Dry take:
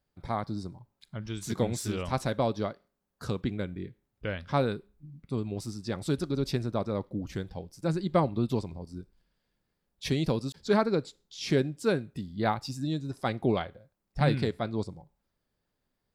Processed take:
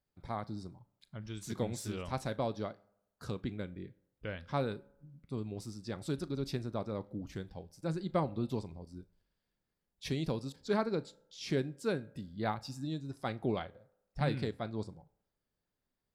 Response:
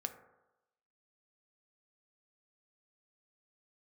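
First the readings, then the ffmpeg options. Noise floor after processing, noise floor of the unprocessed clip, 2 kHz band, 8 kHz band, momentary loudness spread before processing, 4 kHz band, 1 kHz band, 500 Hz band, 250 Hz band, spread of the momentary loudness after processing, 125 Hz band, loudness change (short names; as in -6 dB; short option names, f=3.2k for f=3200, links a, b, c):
under -85 dBFS, -82 dBFS, -7.0 dB, -7.0 dB, 14 LU, -7.0 dB, -7.0 dB, -7.0 dB, -7.0 dB, 14 LU, -7.0 dB, -7.0 dB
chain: -filter_complex "[0:a]asplit=2[a][b];[1:a]atrim=start_sample=2205,asetrate=48510,aresample=44100,adelay=37[c];[b][c]afir=irnorm=-1:irlink=0,volume=-16dB[d];[a][d]amix=inputs=2:normalize=0,volume=-7dB"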